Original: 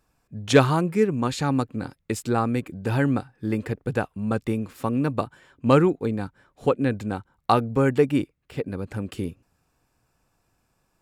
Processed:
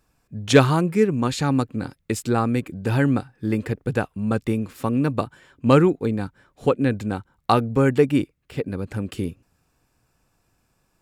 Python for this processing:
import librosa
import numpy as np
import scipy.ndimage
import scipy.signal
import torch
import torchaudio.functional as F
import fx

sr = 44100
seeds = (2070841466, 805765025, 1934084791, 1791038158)

y = fx.peak_eq(x, sr, hz=830.0, db=-2.5, octaves=1.6)
y = y * librosa.db_to_amplitude(3.0)